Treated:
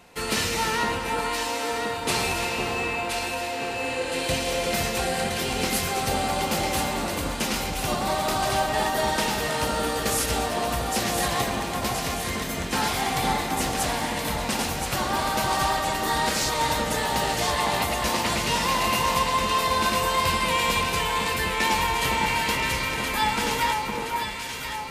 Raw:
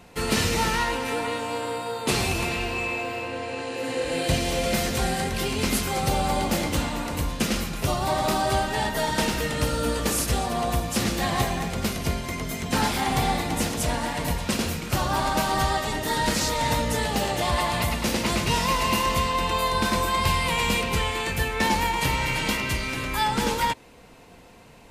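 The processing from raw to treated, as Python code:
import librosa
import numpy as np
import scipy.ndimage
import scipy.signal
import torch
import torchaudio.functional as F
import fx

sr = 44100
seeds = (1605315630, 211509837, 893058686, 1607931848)

y = fx.low_shelf(x, sr, hz=340.0, db=-8.0)
y = fx.echo_alternate(y, sr, ms=511, hz=1400.0, feedback_pct=73, wet_db=-2.5)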